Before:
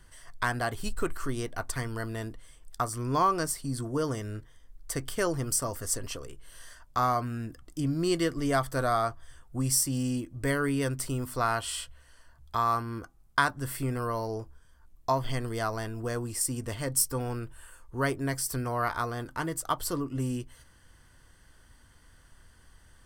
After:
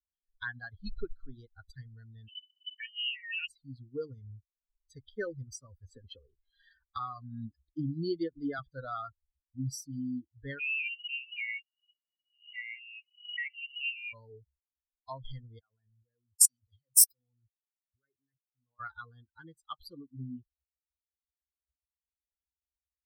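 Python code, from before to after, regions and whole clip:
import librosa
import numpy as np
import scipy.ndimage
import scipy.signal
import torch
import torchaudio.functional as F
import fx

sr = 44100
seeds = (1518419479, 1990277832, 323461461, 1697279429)

y = fx.chain(x, sr, fx.over_compress(threshold_db=-31.0, ratio=-1.0),
    fx.freq_invert(carrier_hz=3000), at=(2.28, 3.48))
y = fx.chain(y, sr, fx.peak_eq(hz=6600.0, db=-4.5, octaves=0.48),
    fx.band_squash(depth_pct=70), at=(5.88, 8.59))
y = fx.chain(y, sr, fx.freq_invert(carrier_hz=2900),
    fx.brickwall_highpass(low_hz=1900.0),
    fx.pre_swell(db_per_s=56.0), at=(10.59, 14.13))
y = fx.chain(y, sr, fx.high_shelf(hz=4400.0, db=9.0),
    fx.level_steps(step_db=21),
    fx.band_widen(depth_pct=100), at=(15.59, 18.8))
y = fx.bin_expand(y, sr, power=3.0)
y = fx.band_shelf(y, sr, hz=810.0, db=-11.5, octaves=1.0)
y = y * librosa.db_to_amplitude(-1.5)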